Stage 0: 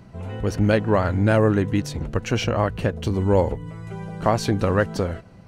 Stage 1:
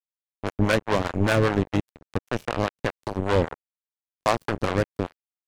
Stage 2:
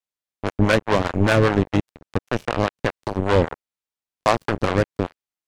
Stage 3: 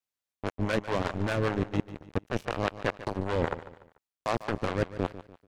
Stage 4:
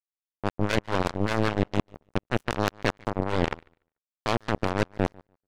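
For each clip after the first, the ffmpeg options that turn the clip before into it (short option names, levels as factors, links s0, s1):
-filter_complex "[0:a]acrusher=bits=2:mix=0:aa=0.5,acrossover=split=510[s0][s1];[s0]aeval=exprs='val(0)*(1-0.7/2+0.7/2*cos(2*PI*5*n/s))':c=same[s2];[s1]aeval=exprs='val(0)*(1-0.7/2-0.7/2*cos(2*PI*5*n/s))':c=same[s3];[s2][s3]amix=inputs=2:normalize=0"
-af "highshelf=f=11000:g=-8.5,volume=1.58"
-af "areverse,acompressor=threshold=0.0631:ratio=10,areverse,aecho=1:1:146|292|438:0.188|0.0697|0.0258"
-af "aeval=exprs='0.299*(cos(1*acos(clip(val(0)/0.299,-1,1)))-cos(1*PI/2))+0.0473*(cos(5*acos(clip(val(0)/0.299,-1,1)))-cos(5*PI/2))+0.075*(cos(7*acos(clip(val(0)/0.299,-1,1)))-cos(7*PI/2))+0.0335*(cos(8*acos(clip(val(0)/0.299,-1,1)))-cos(8*PI/2))':c=same,volume=1.19"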